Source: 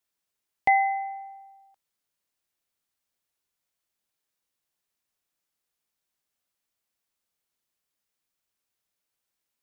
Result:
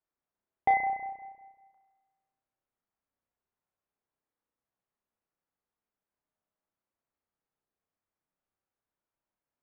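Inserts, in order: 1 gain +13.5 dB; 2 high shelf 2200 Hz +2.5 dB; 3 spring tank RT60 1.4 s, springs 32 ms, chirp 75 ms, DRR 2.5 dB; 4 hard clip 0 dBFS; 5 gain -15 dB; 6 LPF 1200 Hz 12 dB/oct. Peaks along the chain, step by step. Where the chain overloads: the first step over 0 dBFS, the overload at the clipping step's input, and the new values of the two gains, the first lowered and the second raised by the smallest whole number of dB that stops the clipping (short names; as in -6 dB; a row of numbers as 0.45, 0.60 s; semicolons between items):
+3.0, +3.5, +3.5, 0.0, -15.0, -16.5 dBFS; step 1, 3.5 dB; step 1 +9.5 dB, step 5 -11 dB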